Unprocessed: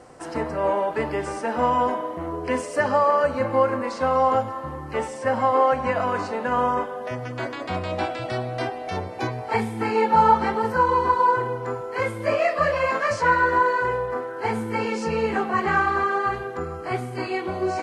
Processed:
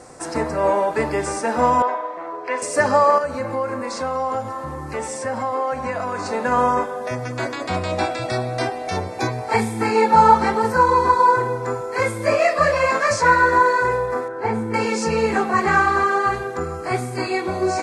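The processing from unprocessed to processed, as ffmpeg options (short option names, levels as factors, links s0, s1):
-filter_complex "[0:a]asettb=1/sr,asplit=3[s0][s1][s2];[s0]atrim=end=1.824[s3];[s1]atrim=start=1.82:end=2.62,asetpts=PTS-STARTPTS,afade=t=in:d=0.004:c=qsin,afade=t=out:st=0.796:d=0.004:c=qsin,highpass=610,lowpass=3000[s4];[s2]atrim=start=2.616[s5];[s3][s4]acrossfade=d=0.004:c1=hsin:c2=qsin[s6];[s6][s5]acrossfade=d=0.004:c1=qsin:c2=hsin,asettb=1/sr,asplit=3[s7][s8][s9];[s7]atrim=end=3.184[s10];[s8]atrim=start=3.18:end=6.26,asetpts=PTS-STARTPTS,afade=t=in:d=0.004:c=qsin,afade=t=out:st=3.076:d=0.004:c=qsin,acompressor=threshold=0.0316:ratio=2:attack=3.2:release=140:knee=1:detection=peak[s11];[s9]atrim=start=6.256[s12];[s10][s11]acrossfade=d=0.004:c1=hsin:c2=qsin[s13];[s13][s12]acrossfade=d=0.004:c1=qsin:c2=hsin,asettb=1/sr,asplit=3[s14][s15][s16];[s14]atrim=end=14.284[s17];[s15]atrim=start=14.28:end=14.74,asetpts=PTS-STARTPTS,afade=t=in:d=0.004:c=qsin,afade=t=out:st=0.456:d=0.004:c=qsin,lowpass=f=1300:p=1[s18];[s16]atrim=start=14.736[s19];[s17][s18]acrossfade=d=0.004:c1=hsin:c2=qsin[s20];[s20][s19]acrossfade=d=0.004:c1=qsin:c2=hsin,equalizer=f=7800:t=o:w=1.4:g=9,bandreject=f=3000:w=7,volume=1.58"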